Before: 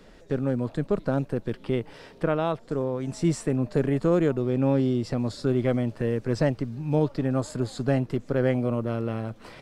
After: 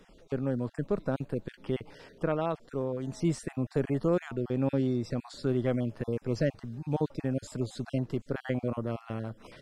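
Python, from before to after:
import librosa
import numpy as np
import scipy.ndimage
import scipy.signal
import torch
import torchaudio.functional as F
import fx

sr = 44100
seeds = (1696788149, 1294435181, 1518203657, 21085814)

y = fx.spec_dropout(x, sr, seeds[0], share_pct=24)
y = y * librosa.db_to_amplitude(-4.5)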